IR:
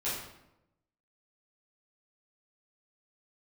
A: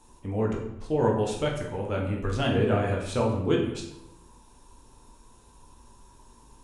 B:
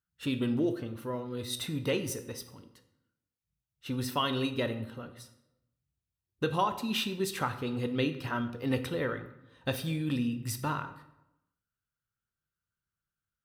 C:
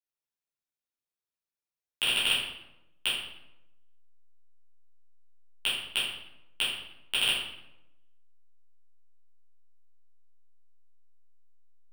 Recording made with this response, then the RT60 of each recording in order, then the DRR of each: C; 0.90 s, 0.90 s, 0.90 s; -1.5 dB, 8.0 dB, -11.0 dB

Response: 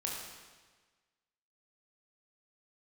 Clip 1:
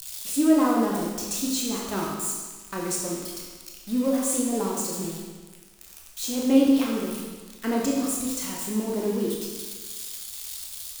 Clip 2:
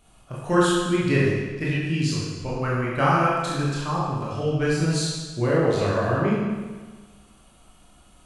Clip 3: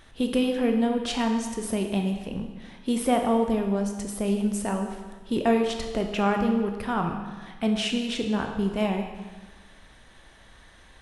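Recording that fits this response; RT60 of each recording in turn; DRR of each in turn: 1; 1.4 s, 1.4 s, 1.4 s; -2.5 dB, -7.0 dB, 3.5 dB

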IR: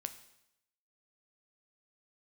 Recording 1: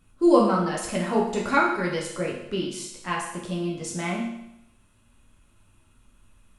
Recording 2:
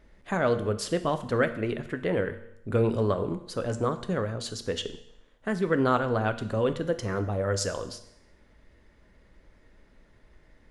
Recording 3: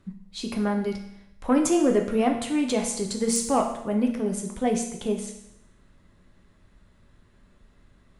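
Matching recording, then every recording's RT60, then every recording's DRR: 2; 0.80 s, 0.80 s, 0.80 s; -3.0 dB, 8.5 dB, 2.5 dB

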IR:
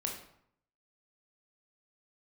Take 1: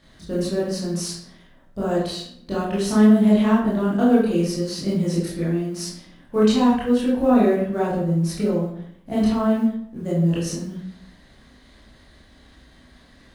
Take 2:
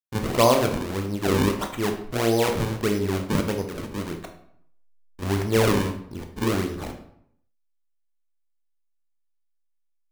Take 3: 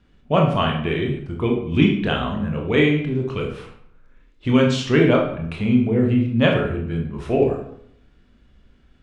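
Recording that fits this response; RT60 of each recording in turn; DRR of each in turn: 3; 0.70 s, 0.70 s, 0.70 s; -8.5 dB, 4.5 dB, 0.0 dB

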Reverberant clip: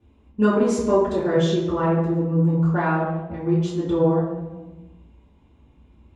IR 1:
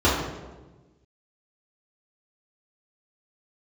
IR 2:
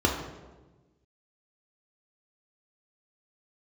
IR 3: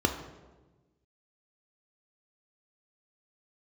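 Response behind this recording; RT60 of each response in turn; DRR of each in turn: 1; 1.2 s, 1.2 s, 1.2 s; -10.0 dB, -1.5 dB, 3.5 dB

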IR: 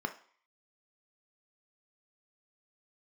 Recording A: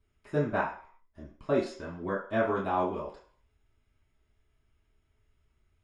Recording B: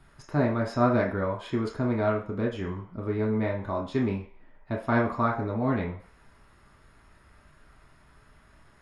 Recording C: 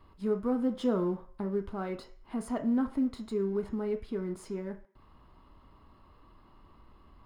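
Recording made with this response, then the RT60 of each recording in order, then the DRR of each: C; 0.50 s, 0.50 s, 0.50 s; -8.0 dB, -1.5 dB, 6.0 dB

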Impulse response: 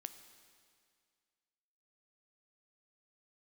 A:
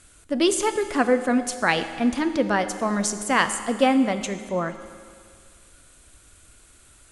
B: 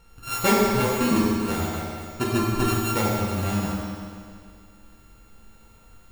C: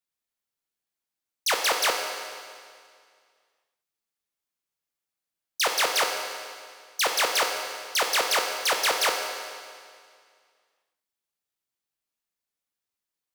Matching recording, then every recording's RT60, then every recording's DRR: A; 2.1 s, 2.1 s, 2.1 s; 9.5 dB, -7.0 dB, 2.5 dB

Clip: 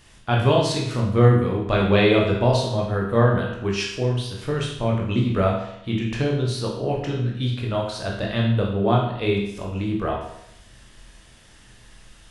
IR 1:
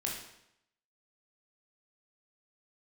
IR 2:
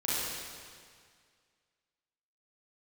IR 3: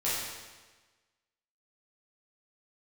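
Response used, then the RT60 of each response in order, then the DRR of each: 1; 0.80 s, 2.0 s, 1.3 s; -2.5 dB, -9.5 dB, -10.0 dB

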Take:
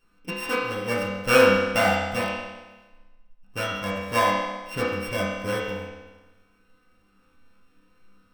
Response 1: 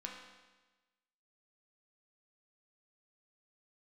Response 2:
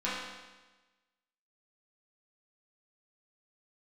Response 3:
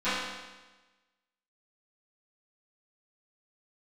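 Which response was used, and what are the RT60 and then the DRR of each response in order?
2; 1.2 s, 1.2 s, 1.2 s; -1.5 dB, -10.5 dB, -20.0 dB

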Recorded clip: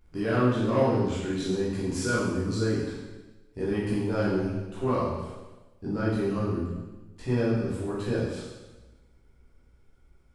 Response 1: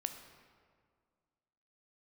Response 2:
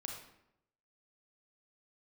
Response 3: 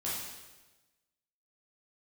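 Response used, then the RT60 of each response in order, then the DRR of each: 3; 2.0 s, 0.80 s, 1.2 s; 6.5 dB, 1.0 dB, -8.0 dB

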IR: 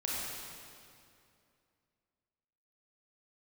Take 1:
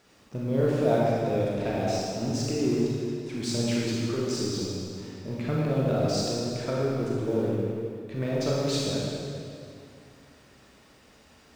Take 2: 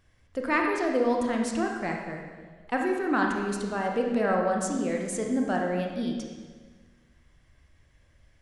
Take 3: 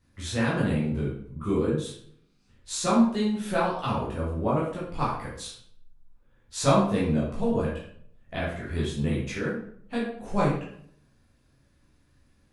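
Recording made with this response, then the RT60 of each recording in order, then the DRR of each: 1; 2.5 s, 1.5 s, 0.60 s; -5.5 dB, 1.0 dB, -7.0 dB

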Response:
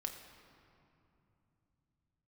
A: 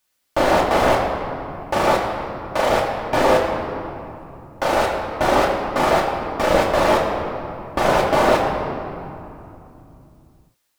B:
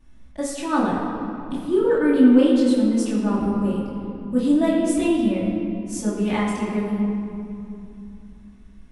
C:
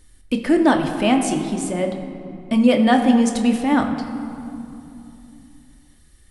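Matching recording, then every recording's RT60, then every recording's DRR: C; 2.8 s, 2.8 s, 2.8 s; -2.5 dB, -9.5 dB, 3.0 dB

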